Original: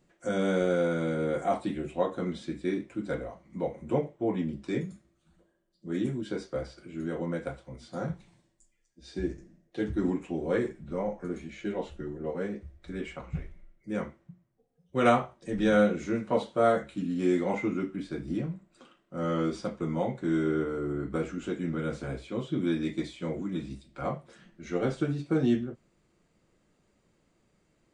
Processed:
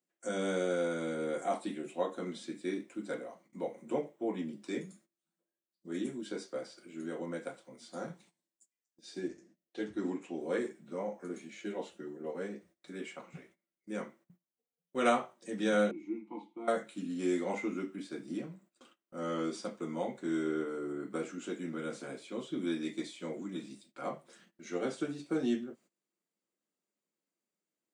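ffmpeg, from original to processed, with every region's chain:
-filter_complex "[0:a]asettb=1/sr,asplit=3[s0][s1][s2];[s0]atrim=end=9.284[s3];[s1]atrim=start=9.28:end=10.41,asetpts=PTS-STARTPTS,afade=t=in:d=0.004:c=qsin,afade=t=out:st=1.126:d=0.004:c=qsin,lowpass=7100,lowshelf=f=110:t=q:w=1.5:g=8[s4];[s2]atrim=start=10.406[s5];[s3][s4]acrossfade=d=0.004:c1=hsin:c2=qsin[s6];[s6][s5]acrossfade=d=0.004:c1=qsin:c2=hsin,asettb=1/sr,asplit=3[s7][s8][s9];[s7]atrim=end=15.914[s10];[s8]atrim=start=15.91:end=16.68,asetpts=PTS-STARTPTS,afade=t=in:d=0.004:c=qsin,afade=t=out:st=0.766:d=0.004:c=qsin,asplit=3[s11][s12][s13];[s11]bandpass=f=300:t=q:w=8,volume=1[s14];[s12]bandpass=f=870:t=q:w=8,volume=0.501[s15];[s13]bandpass=f=2240:t=q:w=8,volume=0.355[s16];[s14][s15][s16]amix=inputs=3:normalize=0,lowshelf=f=320:g=6.5,aecho=1:1:5.8:0.57,atrim=end_sample=33957[s17];[s9]atrim=start=16.676[s18];[s10][s17]acrossfade=d=0.004:c1=hsin:c2=qsin[s19];[s19][s18]acrossfade=d=0.004:c1=qsin:c2=hsin,highpass=f=200:w=0.5412,highpass=f=200:w=1.3066,aemphasis=mode=production:type=50kf,agate=range=0.141:threshold=0.00158:ratio=16:detection=peak,volume=0.531"

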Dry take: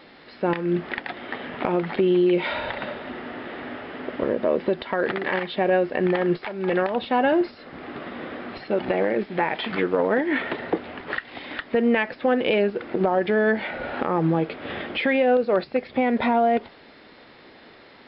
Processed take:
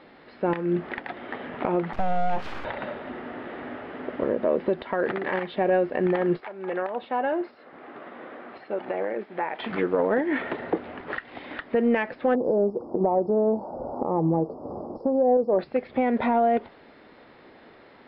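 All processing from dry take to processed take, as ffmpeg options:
-filter_complex "[0:a]asettb=1/sr,asplit=3[s0][s1][s2];[s0]atrim=end=1.934[s3];[s1]atrim=start=1.93:end=2.65,asetpts=PTS-STARTPTS,afade=t=in:d=0.004:c=qsin,afade=t=out:st=0.716:d=0.004:c=qsin,highshelf=f=2900:g=-11,aeval=exprs='abs(val(0))':c=same[s4];[s2]atrim=start=2.646[s5];[s3][s4]acrossfade=d=0.004:c1=hsin:c2=qsin[s6];[s6][s5]acrossfade=d=0.004:c1=qsin:c2=hsin,asettb=1/sr,asplit=3[s7][s8][s9];[s7]atrim=end=6.404[s10];[s8]atrim=start=6.4:end=9.6,asetpts=PTS-STARTPTS,afade=t=in:d=0.004:c=qsin,afade=t=out:st=3.196:d=0.004:c=qsin,highpass=f=640:p=1,highshelf=f=2300:g=-7.5[s11];[s9]atrim=start=9.596[s12];[s10][s11]acrossfade=d=0.004:c1=hsin:c2=qsin[s13];[s13][s12]acrossfade=d=0.004:c1=qsin:c2=hsin,asettb=1/sr,asplit=3[s14][s15][s16];[s14]atrim=end=12.354[s17];[s15]atrim=start=12.35:end=15.59,asetpts=PTS-STARTPTS,afade=t=in:d=0.004:c=qsin,afade=t=out:st=3.236:d=0.004:c=qsin,asuperstop=centerf=2500:order=12:qfactor=0.53,aemphasis=mode=production:type=75kf[s18];[s16]atrim=start=15.586[s19];[s17][s18]acrossfade=d=0.004:c1=hsin:c2=qsin[s20];[s20][s19]acrossfade=d=0.004:c1=qsin:c2=hsin,lowshelf=f=430:g=-3.5,acontrast=43,lowpass=f=1200:p=1,volume=0.596"

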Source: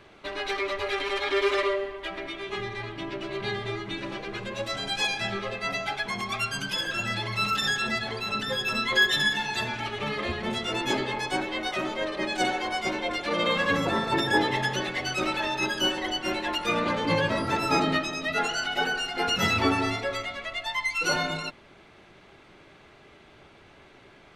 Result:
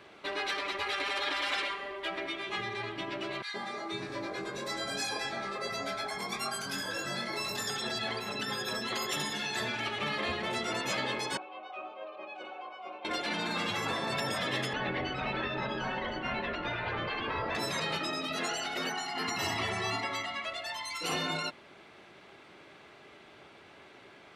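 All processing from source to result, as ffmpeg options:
-filter_complex "[0:a]asettb=1/sr,asplit=3[s0][s1][s2];[s0]atrim=end=3.424[s3];[s1]atrim=start=3.42:end=7.7,asetpts=PTS-STARTPTS,afade=t=in:d=0.004:c=qsin,afade=t=out:st=4.276:d=0.004:c=qsin,equalizer=f=2900:w=2.9:g=-14.5,asplit=2[s4][s5];[s5]adelay=22,volume=0.631[s6];[s4][s6]amix=inputs=2:normalize=0,atrim=end_sample=188748,acrossover=split=190|1400[s7][s8][s9];[s8]adelay=120[s10];[s7]adelay=500[s11];[s11][s10][s9]amix=inputs=3:normalize=0,atrim=end_sample=188748[s12];[s2]atrim=start=7.696[s13];[s3][s12]acrossfade=d=0.004:c1=hsin:c2=qsin[s14];[s14][s13]acrossfade=d=0.004:c1=qsin:c2=hsin,asettb=1/sr,asplit=3[s15][s16][s17];[s15]atrim=end=11.374[s18];[s16]atrim=start=11.37:end=13.05,asetpts=PTS-STARTPTS,afade=t=in:d=0.004:c=qsin,afade=t=out:st=1.676:d=0.004:c=qsin,asplit=3[s19][s20][s21];[s19]bandpass=f=730:t=q:w=8,volume=1[s22];[s20]bandpass=f=1090:t=q:w=8,volume=0.501[s23];[s21]bandpass=f=2440:t=q:w=8,volume=0.355[s24];[s22][s23][s24]amix=inputs=3:normalize=0,aemphasis=mode=reproduction:type=50fm,bandreject=f=670:w=7.6[s25];[s17]atrim=start=13.046[s26];[s18][s25]acrossfade=d=0.004:c1=hsin:c2=qsin[s27];[s27][s26]acrossfade=d=0.004:c1=qsin:c2=hsin,asettb=1/sr,asplit=3[s28][s29][s30];[s28]atrim=end=14.734[s31];[s29]atrim=start=14.73:end=17.55,asetpts=PTS-STARTPTS,afade=t=in:d=0.004:c=qsin,afade=t=out:st=2.816:d=0.004:c=qsin,lowpass=3100,aemphasis=mode=reproduction:type=bsi[s32];[s30]atrim=start=17.546[s33];[s31][s32]acrossfade=d=0.004:c1=hsin:c2=qsin[s34];[s34][s33]acrossfade=d=0.004:c1=qsin:c2=hsin,asettb=1/sr,asplit=3[s35][s36][s37];[s35]atrim=end=18.894[s38];[s36]atrim=start=18.89:end=20.45,asetpts=PTS-STARTPTS,afade=t=in:d=0.004:c=qsin,afade=t=out:st=1.556:d=0.004:c=qsin,highpass=f=140:p=1,highshelf=f=5100:g=-5.5,aecho=1:1:1:0.8,atrim=end_sample=68796[s39];[s37]atrim=start=20.446[s40];[s38][s39]acrossfade=d=0.004:c1=hsin:c2=qsin[s41];[s41][s40]acrossfade=d=0.004:c1=qsin:c2=hsin,highpass=f=230:p=1,afftfilt=real='re*lt(hypot(re,im),0.141)':imag='im*lt(hypot(re,im),0.141)':win_size=1024:overlap=0.75,bandreject=f=6400:w=24"

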